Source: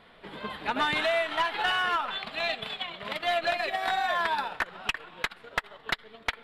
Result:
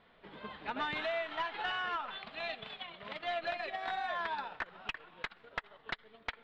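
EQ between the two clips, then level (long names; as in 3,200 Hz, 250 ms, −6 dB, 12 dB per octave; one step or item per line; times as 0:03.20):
low-pass filter 6,900 Hz 12 dB per octave
high-frequency loss of the air 95 metres
−8.5 dB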